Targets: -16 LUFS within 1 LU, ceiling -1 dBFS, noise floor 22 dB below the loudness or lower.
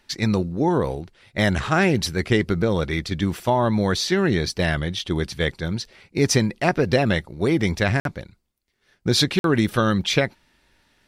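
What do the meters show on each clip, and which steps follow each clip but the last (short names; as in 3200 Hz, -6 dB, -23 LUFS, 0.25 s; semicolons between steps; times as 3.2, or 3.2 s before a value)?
dropouts 2; longest dropout 52 ms; loudness -22.0 LUFS; peak -4.0 dBFS; loudness target -16.0 LUFS
-> interpolate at 8/9.39, 52 ms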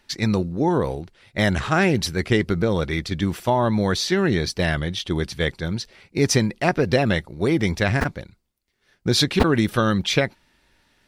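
dropouts 0; loudness -22.0 LUFS; peak -2.5 dBFS; loudness target -16.0 LUFS
-> gain +6 dB; limiter -1 dBFS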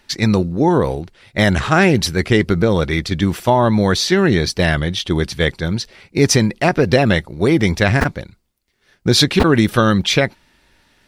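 loudness -16.0 LUFS; peak -1.0 dBFS; noise floor -60 dBFS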